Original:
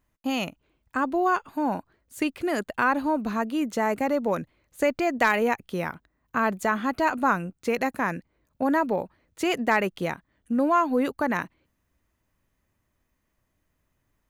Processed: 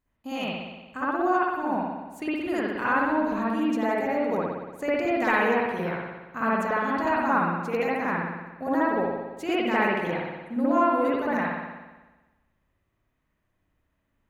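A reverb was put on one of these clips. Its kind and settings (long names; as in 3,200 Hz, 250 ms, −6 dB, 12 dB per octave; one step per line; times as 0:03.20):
spring reverb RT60 1.2 s, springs 58 ms, chirp 35 ms, DRR −9 dB
level −9.5 dB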